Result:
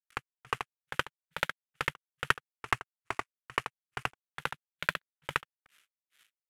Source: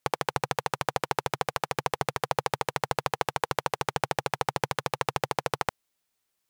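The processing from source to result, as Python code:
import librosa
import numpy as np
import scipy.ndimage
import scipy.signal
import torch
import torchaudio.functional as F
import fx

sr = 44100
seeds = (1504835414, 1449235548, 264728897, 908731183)

y = fx.cvsd(x, sr, bps=64000)
y = fx.high_shelf(y, sr, hz=5600.0, db=9.5)
y = fx.over_compress(y, sr, threshold_db=-38.0, ratio=-1.0)
y = fx.band_shelf(y, sr, hz=2000.0, db=14.5, octaves=1.7)
y = fx.granulator(y, sr, seeds[0], grain_ms=236.0, per_s=2.3, spray_ms=144.0, spread_st=3)
y = F.gain(torch.from_numpy(y), 4.0).numpy()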